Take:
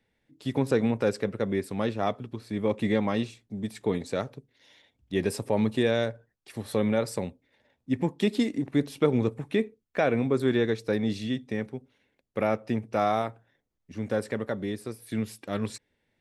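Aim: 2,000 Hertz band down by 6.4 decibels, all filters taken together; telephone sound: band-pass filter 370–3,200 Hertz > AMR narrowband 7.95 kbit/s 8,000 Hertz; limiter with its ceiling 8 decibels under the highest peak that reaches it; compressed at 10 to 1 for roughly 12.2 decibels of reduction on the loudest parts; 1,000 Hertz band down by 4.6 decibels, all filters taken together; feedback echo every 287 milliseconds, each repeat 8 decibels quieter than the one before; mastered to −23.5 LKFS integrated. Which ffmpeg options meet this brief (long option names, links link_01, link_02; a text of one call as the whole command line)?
ffmpeg -i in.wav -af "equalizer=frequency=1000:width_type=o:gain=-5.5,equalizer=frequency=2000:width_type=o:gain=-5.5,acompressor=threshold=-32dB:ratio=10,alimiter=level_in=4dB:limit=-24dB:level=0:latency=1,volume=-4dB,highpass=370,lowpass=3200,aecho=1:1:287|574|861|1148|1435:0.398|0.159|0.0637|0.0255|0.0102,volume=21.5dB" -ar 8000 -c:a libopencore_amrnb -b:a 7950 out.amr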